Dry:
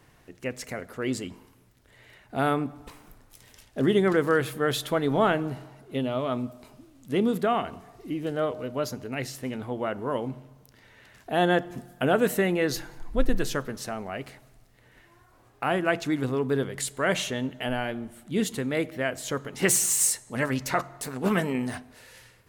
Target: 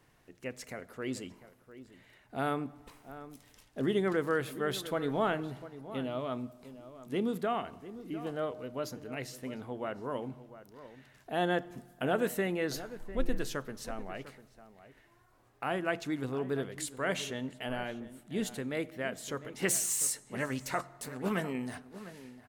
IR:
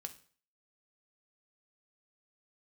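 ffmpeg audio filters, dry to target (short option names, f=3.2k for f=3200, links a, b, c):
-filter_complex "[0:a]equalizer=f=65:w=0.71:g=-3,asplit=2[a][b];[b]adelay=699.7,volume=-14dB,highshelf=f=4k:g=-15.7[c];[a][c]amix=inputs=2:normalize=0,volume=-7.5dB"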